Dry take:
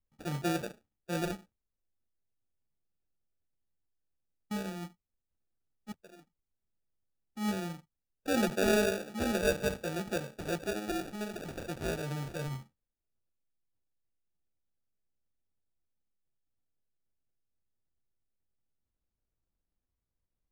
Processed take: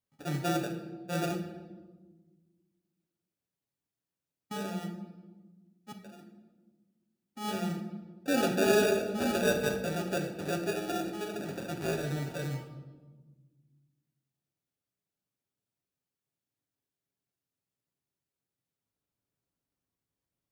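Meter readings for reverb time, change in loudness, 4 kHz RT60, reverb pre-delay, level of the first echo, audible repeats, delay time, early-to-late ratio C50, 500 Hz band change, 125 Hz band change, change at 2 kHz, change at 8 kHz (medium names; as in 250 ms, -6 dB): 1.3 s, +2.0 dB, 0.90 s, 7 ms, no echo, no echo, no echo, 8.0 dB, +3.0 dB, +2.5 dB, +1.5 dB, +1.5 dB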